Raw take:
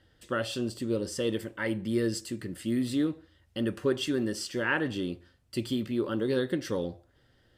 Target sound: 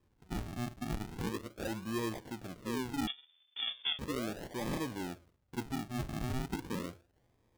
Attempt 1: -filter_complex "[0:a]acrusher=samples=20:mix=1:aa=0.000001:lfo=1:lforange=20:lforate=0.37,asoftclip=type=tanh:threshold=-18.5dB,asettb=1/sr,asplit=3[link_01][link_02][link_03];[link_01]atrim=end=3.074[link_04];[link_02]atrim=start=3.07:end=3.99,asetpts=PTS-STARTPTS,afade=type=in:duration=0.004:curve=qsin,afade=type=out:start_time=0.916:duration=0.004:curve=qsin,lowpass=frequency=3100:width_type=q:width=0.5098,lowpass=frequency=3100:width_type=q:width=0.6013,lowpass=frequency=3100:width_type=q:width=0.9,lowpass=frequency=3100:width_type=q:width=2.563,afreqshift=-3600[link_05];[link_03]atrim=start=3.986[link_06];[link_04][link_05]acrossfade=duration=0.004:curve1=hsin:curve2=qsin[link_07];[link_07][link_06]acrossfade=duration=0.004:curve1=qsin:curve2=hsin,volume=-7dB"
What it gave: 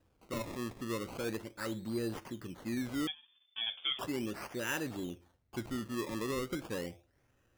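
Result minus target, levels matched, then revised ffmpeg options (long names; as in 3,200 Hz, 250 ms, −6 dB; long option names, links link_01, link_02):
sample-and-hold swept by an LFO: distortion −15 dB
-filter_complex "[0:a]acrusher=samples=61:mix=1:aa=0.000001:lfo=1:lforange=61:lforate=0.37,asoftclip=type=tanh:threshold=-18.5dB,asettb=1/sr,asplit=3[link_01][link_02][link_03];[link_01]atrim=end=3.074[link_04];[link_02]atrim=start=3.07:end=3.99,asetpts=PTS-STARTPTS,afade=type=in:duration=0.004:curve=qsin,afade=type=out:start_time=0.916:duration=0.004:curve=qsin,lowpass=frequency=3100:width_type=q:width=0.5098,lowpass=frequency=3100:width_type=q:width=0.6013,lowpass=frequency=3100:width_type=q:width=0.9,lowpass=frequency=3100:width_type=q:width=2.563,afreqshift=-3600[link_05];[link_03]atrim=start=3.986[link_06];[link_04][link_05]acrossfade=duration=0.004:curve1=hsin:curve2=qsin[link_07];[link_07][link_06]acrossfade=duration=0.004:curve1=qsin:curve2=hsin,volume=-7dB"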